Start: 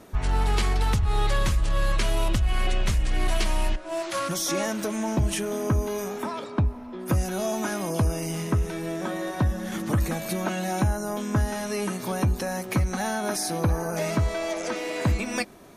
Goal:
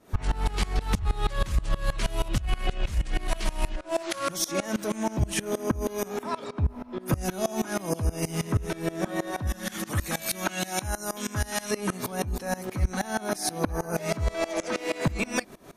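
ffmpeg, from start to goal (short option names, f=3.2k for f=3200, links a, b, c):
-filter_complex "[0:a]asettb=1/sr,asplit=3[a][b][c];[a]atrim=end=9.474[d];[b]atrim=start=9.47:end=11.71,asetpts=PTS-STARTPTS,afade=t=in:d=0.004:c=qsin,afade=t=out:st=2.236:d=0.004:c=qsin,tiltshelf=f=1.2k:g=-6[e];[c]atrim=start=11.706[f];[d][e]acrossfade=d=0.004:c1=hsin:c2=qsin[g];[g][f]acrossfade=d=0.004:c1=qsin:c2=hsin,alimiter=limit=-21dB:level=0:latency=1:release=28,aeval=exprs='val(0)*pow(10,-22*if(lt(mod(-6.3*n/s,1),2*abs(-6.3)/1000),1-mod(-6.3*n/s,1)/(2*abs(-6.3)/1000),(mod(-6.3*n/s,1)-2*abs(-6.3)/1000)/(1-2*abs(-6.3)/1000))/20)':c=same,volume=7.5dB"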